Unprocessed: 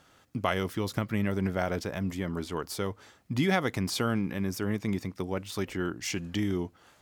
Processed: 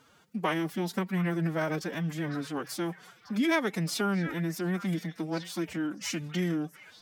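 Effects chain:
echo through a band-pass that steps 723 ms, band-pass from 1,500 Hz, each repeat 1.4 octaves, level −8.5 dB
phase-vocoder pitch shift with formants kept +9.5 semitones

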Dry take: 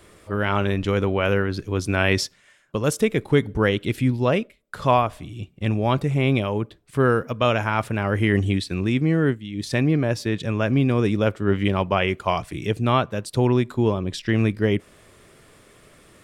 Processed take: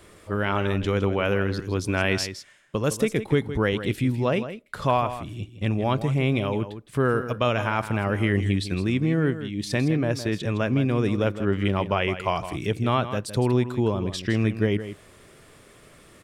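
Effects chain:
downward compressor 1.5 to 1, threshold −24 dBFS, peak gain reduction 4.5 dB
single-tap delay 162 ms −11.5 dB

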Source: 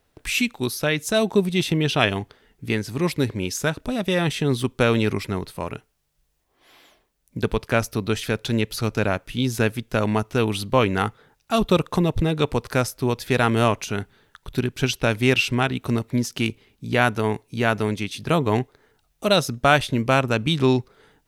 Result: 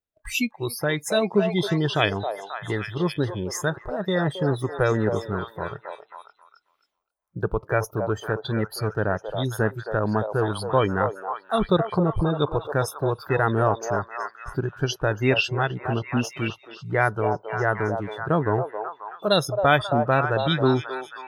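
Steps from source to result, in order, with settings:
noise reduction from a noise print of the clip's start 26 dB
echo through a band-pass that steps 269 ms, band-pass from 680 Hz, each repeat 0.7 octaves, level −3 dB
level −1.5 dB

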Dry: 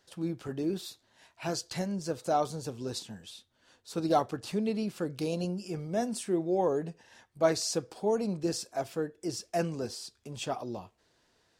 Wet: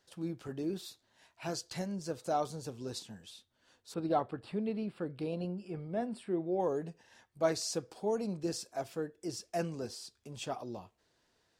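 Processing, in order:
0:03.94–0:06.60: moving average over 7 samples
level −4.5 dB

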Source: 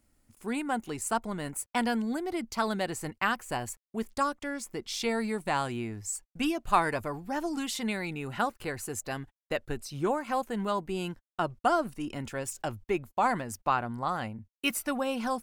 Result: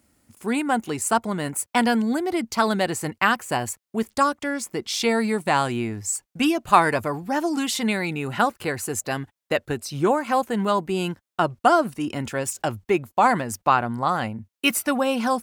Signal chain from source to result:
high-pass filter 84 Hz 12 dB per octave
level +8.5 dB

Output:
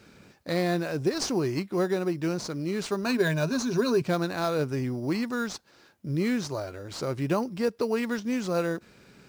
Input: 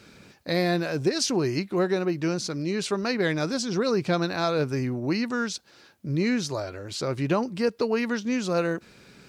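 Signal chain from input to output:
0:03.05–0:04.02: EQ curve with evenly spaced ripples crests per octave 1.5, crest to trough 12 dB
in parallel at −7.5 dB: sample-rate reduction 5,300 Hz, jitter 0%
on the sum: level −5 dB

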